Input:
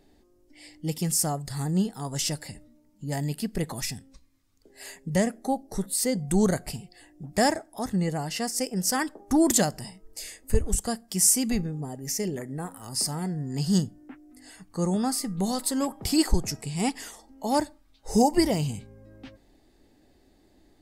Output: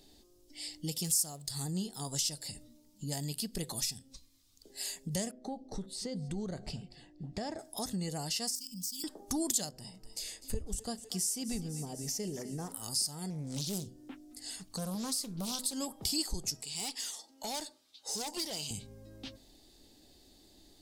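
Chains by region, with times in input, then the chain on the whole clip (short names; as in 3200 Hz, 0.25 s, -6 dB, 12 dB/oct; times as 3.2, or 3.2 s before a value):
1.04–1.51 high shelf 4600 Hz +7 dB + backlash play -45 dBFS
5.31–7.59 compressor 2.5:1, threshold -27 dBFS + tape spacing loss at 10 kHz 26 dB + echo 0.239 s -22 dB
8.55–9.04 inverse Chebyshev band-stop 410–1800 Hz + compressor 5:1, threshold -39 dBFS + careless resampling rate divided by 2×, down filtered, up hold
9.69–12.72 high shelf 3100 Hz -11.5 dB + thinning echo 0.25 s, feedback 64%, high-pass 320 Hz, level -16.5 dB
13.3–15.73 compressor 1.5:1, threshold -30 dBFS + Doppler distortion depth 0.76 ms
16.63–18.71 weighting filter A + tube stage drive 30 dB, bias 0.35
whole clip: resonant high shelf 2700 Hz +10 dB, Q 1.5; de-hum 126.6 Hz, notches 5; compressor 2.5:1, threshold -35 dBFS; gain -2 dB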